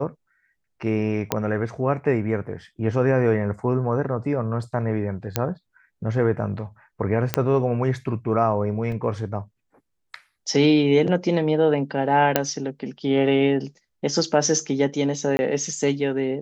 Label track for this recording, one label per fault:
1.320000	1.320000	pop -5 dBFS
5.360000	5.360000	pop -5 dBFS
7.340000	7.340000	pop -4 dBFS
8.920000	8.920000	gap 3.6 ms
12.360000	12.360000	pop -2 dBFS
15.370000	15.390000	gap 20 ms

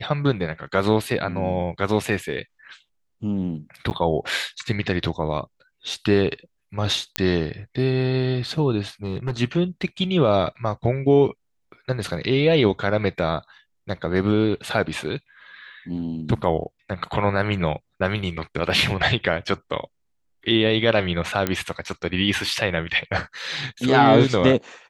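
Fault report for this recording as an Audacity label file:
3.900000	3.910000	gap 9.5 ms
7.160000	7.160000	pop -3 dBFS
9.040000	9.390000	clipped -20.5 dBFS
21.470000	21.470000	pop -7 dBFS

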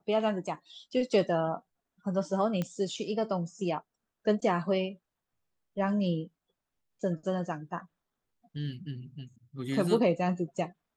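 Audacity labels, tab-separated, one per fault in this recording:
2.620000	2.620000	pop -19 dBFS

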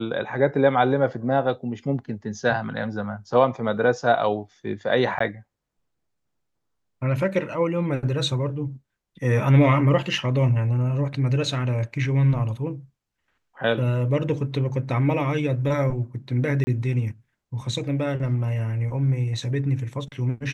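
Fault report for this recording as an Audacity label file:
5.190000	5.200000	gap 14 ms
16.640000	16.670000	gap 30 ms

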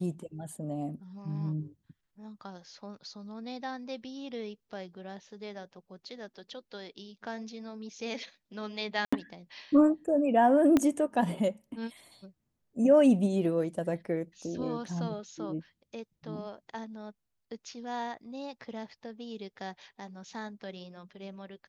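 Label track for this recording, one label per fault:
9.050000	9.120000	gap 75 ms
10.770000	10.770000	pop -12 dBFS

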